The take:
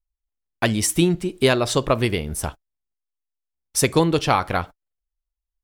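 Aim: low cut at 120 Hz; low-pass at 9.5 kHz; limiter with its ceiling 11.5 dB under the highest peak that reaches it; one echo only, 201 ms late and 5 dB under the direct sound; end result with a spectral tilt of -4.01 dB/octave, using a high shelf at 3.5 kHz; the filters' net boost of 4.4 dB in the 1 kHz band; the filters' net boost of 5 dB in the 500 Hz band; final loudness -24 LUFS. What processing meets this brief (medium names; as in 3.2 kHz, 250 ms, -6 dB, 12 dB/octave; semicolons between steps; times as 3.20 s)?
high-pass 120 Hz; low-pass 9.5 kHz; peaking EQ 500 Hz +5.5 dB; peaking EQ 1 kHz +3.5 dB; treble shelf 3.5 kHz +4 dB; peak limiter -10 dBFS; delay 201 ms -5 dB; trim -2.5 dB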